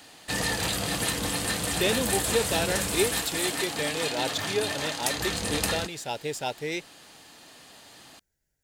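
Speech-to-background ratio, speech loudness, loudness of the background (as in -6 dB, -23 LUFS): -3.0 dB, -31.0 LUFS, -28.0 LUFS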